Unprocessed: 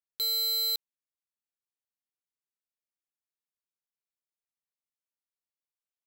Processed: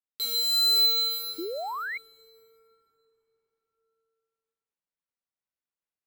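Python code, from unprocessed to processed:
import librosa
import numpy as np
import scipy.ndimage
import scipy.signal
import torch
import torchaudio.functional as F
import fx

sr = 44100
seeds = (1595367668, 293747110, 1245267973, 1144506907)

y = scipy.ndimage.median_filter(x, 9, mode='constant')
y = fx.rev_plate(y, sr, seeds[0], rt60_s=4.7, hf_ratio=0.5, predelay_ms=0, drr_db=-10.0)
y = fx.spec_paint(y, sr, seeds[1], shape='rise', start_s=1.38, length_s=0.6, low_hz=310.0, high_hz=2300.0, level_db=-31.0)
y = y * 10.0 ** (-2.0 / 20.0)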